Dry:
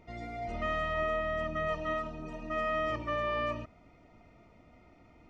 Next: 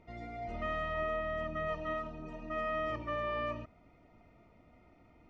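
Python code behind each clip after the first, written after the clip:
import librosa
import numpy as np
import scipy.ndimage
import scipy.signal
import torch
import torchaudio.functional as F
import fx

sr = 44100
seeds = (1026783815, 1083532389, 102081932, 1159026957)

y = fx.lowpass(x, sr, hz=3800.0, slope=6)
y = F.gain(torch.from_numpy(y), -3.0).numpy()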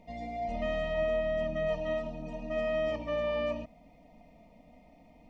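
y = fx.fixed_phaser(x, sr, hz=370.0, stages=6)
y = F.gain(torch.from_numpy(y), 7.5).numpy()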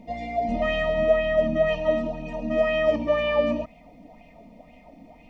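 y = fx.bell_lfo(x, sr, hz=2.0, low_hz=220.0, high_hz=2900.0, db=11)
y = F.gain(torch.from_numpy(y), 5.5).numpy()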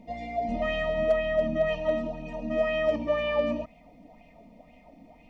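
y = np.clip(x, -10.0 ** (-11.5 / 20.0), 10.0 ** (-11.5 / 20.0))
y = F.gain(torch.from_numpy(y), -4.0).numpy()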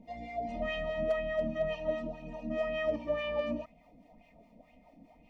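y = fx.harmonic_tremolo(x, sr, hz=4.8, depth_pct=70, crossover_hz=680.0)
y = F.gain(torch.from_numpy(y), -3.0).numpy()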